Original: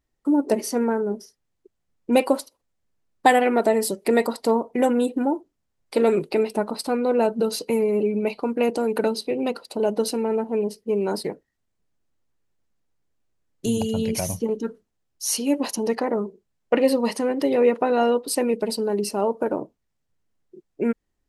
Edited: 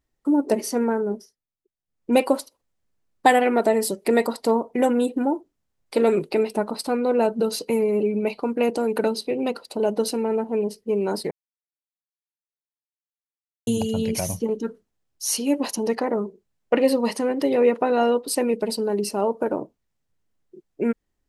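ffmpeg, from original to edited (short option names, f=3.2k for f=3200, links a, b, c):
-filter_complex "[0:a]asplit=5[a][b][c][d][e];[a]atrim=end=1.5,asetpts=PTS-STARTPTS,afade=t=out:st=1.14:d=0.36:c=qua:silence=0.133352[f];[b]atrim=start=1.5:end=1.74,asetpts=PTS-STARTPTS,volume=-17.5dB[g];[c]atrim=start=1.74:end=11.31,asetpts=PTS-STARTPTS,afade=t=in:d=0.36:c=qua:silence=0.133352,afade=t=out:st=9.566:d=0.004:c=hsin[h];[d]atrim=start=11.31:end=13.67,asetpts=PTS-STARTPTS,volume=0[i];[e]atrim=start=13.67,asetpts=PTS-STARTPTS,afade=t=in:d=0.004:c=hsin[j];[f][g][h][i][j]concat=n=5:v=0:a=1"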